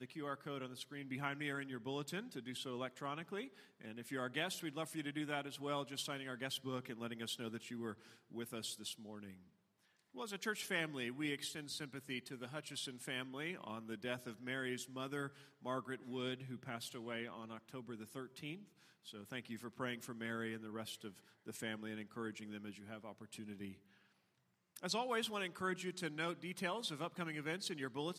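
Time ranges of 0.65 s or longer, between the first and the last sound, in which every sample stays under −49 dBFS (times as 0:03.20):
0:09.34–0:10.16
0:23.74–0:24.76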